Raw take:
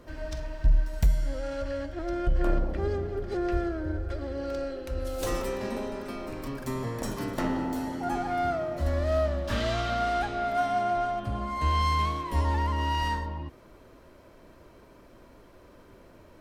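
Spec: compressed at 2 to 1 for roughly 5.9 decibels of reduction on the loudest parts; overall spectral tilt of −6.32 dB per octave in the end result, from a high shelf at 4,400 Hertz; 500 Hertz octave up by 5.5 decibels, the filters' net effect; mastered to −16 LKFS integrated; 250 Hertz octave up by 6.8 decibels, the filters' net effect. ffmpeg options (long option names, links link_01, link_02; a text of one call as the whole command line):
ffmpeg -i in.wav -af "equalizer=frequency=250:width_type=o:gain=6.5,equalizer=frequency=500:width_type=o:gain=6,highshelf=frequency=4400:gain=-5,acompressor=threshold=-27dB:ratio=2,volume=13.5dB" out.wav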